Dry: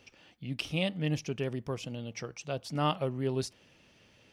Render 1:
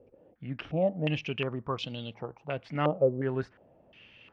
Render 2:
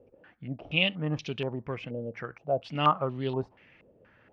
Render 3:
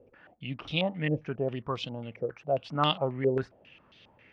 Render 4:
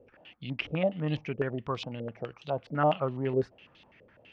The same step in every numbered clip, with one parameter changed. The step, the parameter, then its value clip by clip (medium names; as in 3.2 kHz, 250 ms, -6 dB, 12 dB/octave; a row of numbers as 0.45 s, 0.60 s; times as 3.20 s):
step-sequenced low-pass, rate: 2.8 Hz, 4.2 Hz, 7.4 Hz, 12 Hz